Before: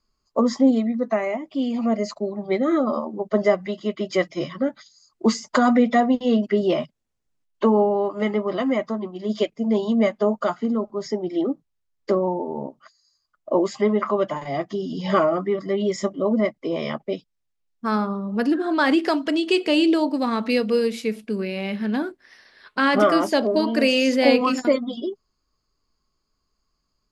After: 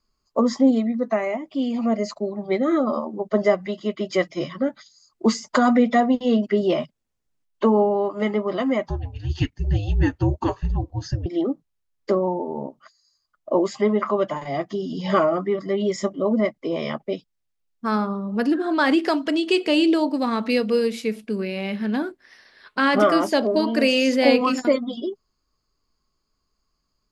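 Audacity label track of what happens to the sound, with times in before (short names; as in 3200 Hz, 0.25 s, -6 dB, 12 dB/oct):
8.880000	11.260000	frequency shift -290 Hz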